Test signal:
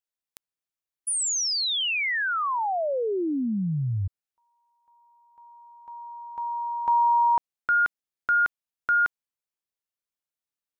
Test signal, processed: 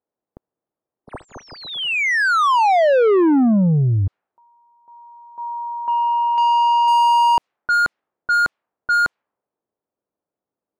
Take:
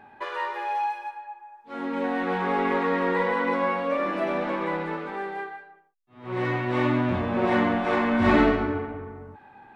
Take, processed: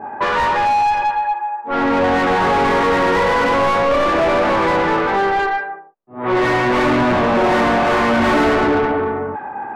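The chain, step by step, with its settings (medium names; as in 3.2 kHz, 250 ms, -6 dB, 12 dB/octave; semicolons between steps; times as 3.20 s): overdrive pedal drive 34 dB, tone 1.2 kHz, clips at -6.5 dBFS; level-controlled noise filter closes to 480 Hz, open at -13.5 dBFS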